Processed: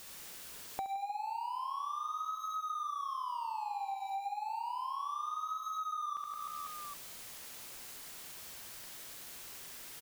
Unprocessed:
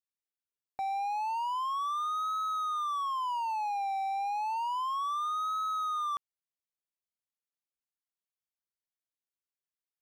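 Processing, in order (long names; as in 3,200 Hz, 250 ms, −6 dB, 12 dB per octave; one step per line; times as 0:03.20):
converter with a step at zero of −46 dBFS
on a send: reverse bouncing-ball delay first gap 70 ms, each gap 1.4×, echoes 5
on the sum: downward compressor 5 to 1, threshold −44 dBFS, peak gain reduction 16 dB
level +6 dB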